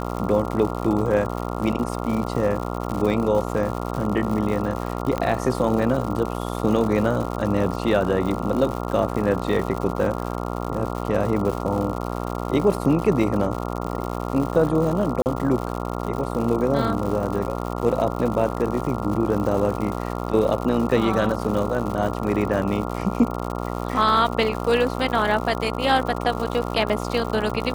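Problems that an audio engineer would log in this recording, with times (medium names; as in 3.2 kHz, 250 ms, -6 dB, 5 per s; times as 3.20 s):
buzz 60 Hz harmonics 23 -28 dBFS
crackle 150 per s -28 dBFS
5.18 s: pop -12 dBFS
15.22–15.26 s: dropout 39 ms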